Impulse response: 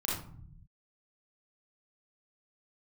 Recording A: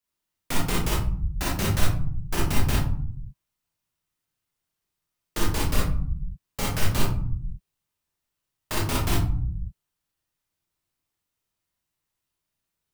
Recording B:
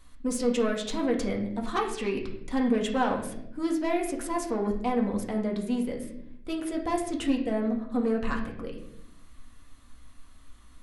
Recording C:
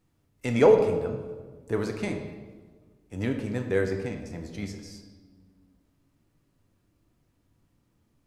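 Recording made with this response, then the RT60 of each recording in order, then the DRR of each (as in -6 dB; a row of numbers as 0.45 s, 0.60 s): A; 0.55 s, 0.80 s, 1.5 s; -5.0 dB, 0.0 dB, 4.0 dB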